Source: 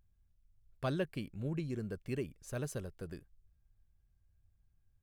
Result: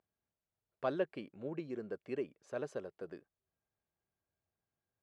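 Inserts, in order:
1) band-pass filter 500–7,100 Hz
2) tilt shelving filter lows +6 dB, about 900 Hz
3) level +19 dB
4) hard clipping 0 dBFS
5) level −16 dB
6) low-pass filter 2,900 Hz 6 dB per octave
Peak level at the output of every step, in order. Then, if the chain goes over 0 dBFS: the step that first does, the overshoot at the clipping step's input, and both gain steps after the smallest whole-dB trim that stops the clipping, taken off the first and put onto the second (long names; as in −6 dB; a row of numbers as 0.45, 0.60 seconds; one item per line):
−24.0, −25.0, −6.0, −6.0, −22.0, −22.5 dBFS
no step passes full scale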